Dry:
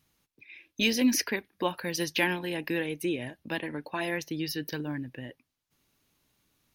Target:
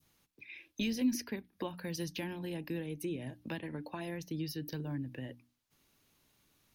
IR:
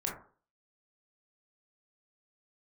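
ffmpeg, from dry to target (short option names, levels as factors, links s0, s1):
-filter_complex "[0:a]bandreject=f=60:t=h:w=6,bandreject=f=120:t=h:w=6,bandreject=f=180:t=h:w=6,bandreject=f=240:t=h:w=6,bandreject=f=300:t=h:w=6,acrossover=split=210[s0][s1];[s1]acompressor=threshold=0.00708:ratio=3[s2];[s0][s2]amix=inputs=2:normalize=0,adynamicequalizer=threshold=0.00126:dfrequency=1900:dqfactor=0.83:tfrequency=1900:tqfactor=0.83:attack=5:release=100:ratio=0.375:range=3.5:mode=cutabove:tftype=bell,volume=1.12"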